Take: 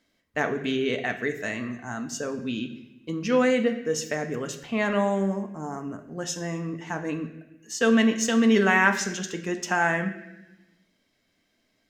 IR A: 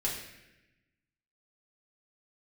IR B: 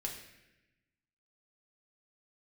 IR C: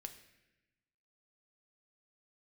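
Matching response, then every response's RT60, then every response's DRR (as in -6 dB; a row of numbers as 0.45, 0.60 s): C; 1.0, 1.0, 1.0 s; -5.0, -1.0, 6.0 dB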